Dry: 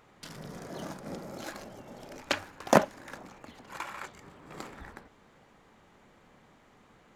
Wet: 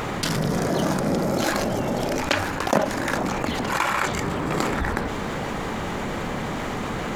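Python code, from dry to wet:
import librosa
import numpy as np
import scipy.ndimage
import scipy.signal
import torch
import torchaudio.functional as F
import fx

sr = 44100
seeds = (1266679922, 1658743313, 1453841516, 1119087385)

y = fx.rider(x, sr, range_db=4, speed_s=0.5)
y = fx.low_shelf(y, sr, hz=450.0, db=3.0)
y = fx.env_flatten(y, sr, amount_pct=70)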